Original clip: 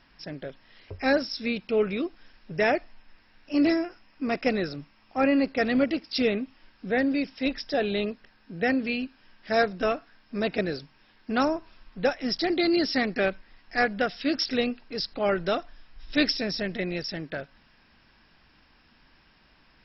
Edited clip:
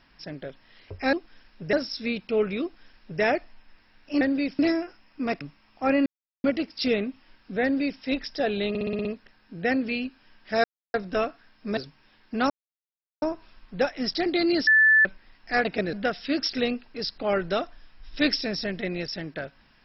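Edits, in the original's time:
2.02–2.62 copy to 1.13
4.43–4.75 cut
5.4–5.78 mute
6.97–7.35 copy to 3.61
8.03 stutter 0.06 s, 7 plays
9.62 insert silence 0.30 s
10.45–10.73 move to 13.89
11.46 insert silence 0.72 s
12.91–13.29 bleep 1750 Hz -14 dBFS

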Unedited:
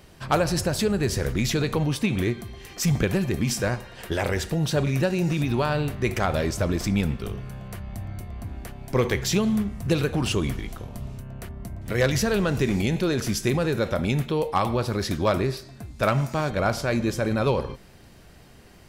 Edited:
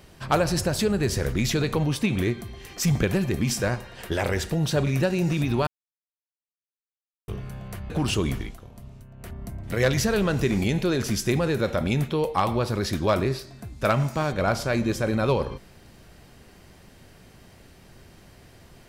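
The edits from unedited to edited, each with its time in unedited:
5.67–7.28 mute
7.9–10.08 cut
10.6–11.5 dip -8.5 dB, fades 0.15 s

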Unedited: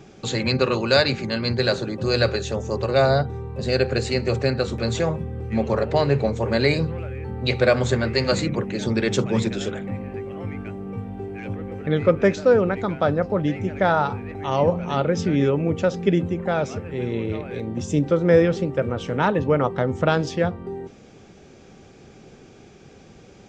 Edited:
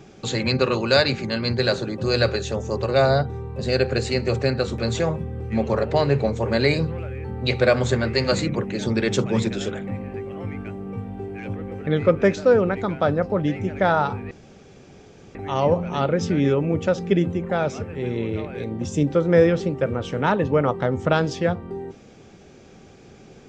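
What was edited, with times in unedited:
14.31 insert room tone 1.04 s

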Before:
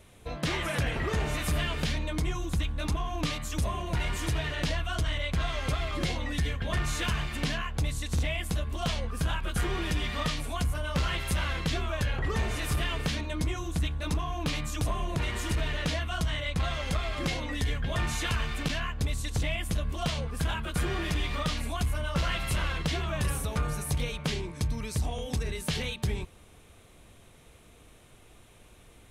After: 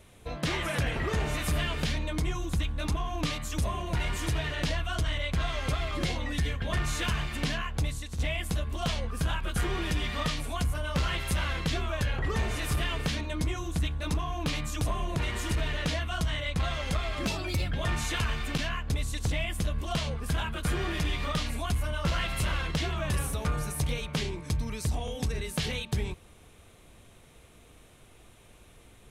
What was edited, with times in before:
7.83–8.19 fade out, to -10.5 dB
17.26–17.82 speed 124%

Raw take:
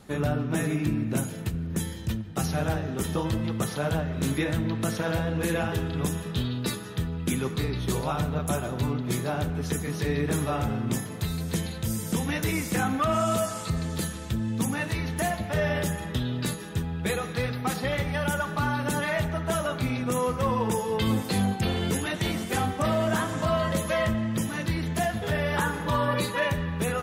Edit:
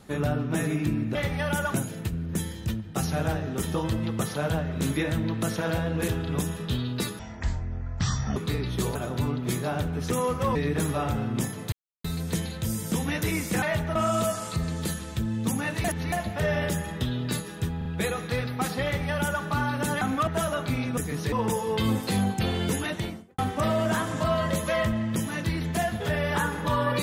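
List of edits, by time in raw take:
5.49–5.74 cut
6.85–7.46 speed 52%
8.05–8.57 cut
9.73–10.08 swap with 20.1–20.54
11.25 insert silence 0.32 s
12.83–13.09 swap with 19.07–19.4
14.98–15.26 reverse
16.91 stutter 0.04 s, 3 plays
17.9–18.49 copy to 1.15
22.05–22.6 studio fade out

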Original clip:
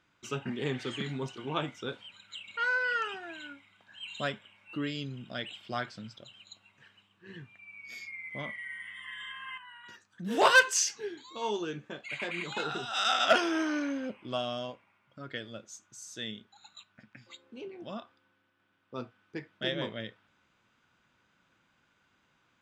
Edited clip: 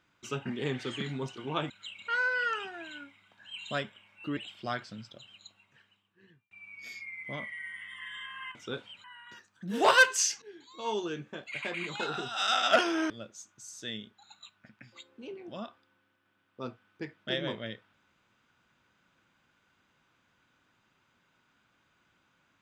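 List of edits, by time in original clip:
1.7–2.19 move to 9.61
4.86–5.43 cut
6.39–7.57 fade out
10.99–11.45 fade in, from -17.5 dB
13.67–15.44 cut

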